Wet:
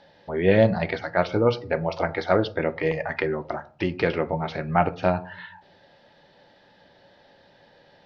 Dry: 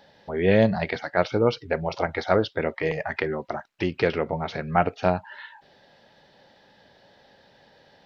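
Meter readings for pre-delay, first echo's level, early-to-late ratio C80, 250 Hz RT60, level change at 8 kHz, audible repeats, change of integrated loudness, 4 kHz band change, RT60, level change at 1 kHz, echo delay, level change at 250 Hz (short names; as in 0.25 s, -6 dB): 3 ms, none, 23.0 dB, 0.75 s, n/a, none, +0.5 dB, -1.0 dB, 0.45 s, +0.5 dB, none, +0.5 dB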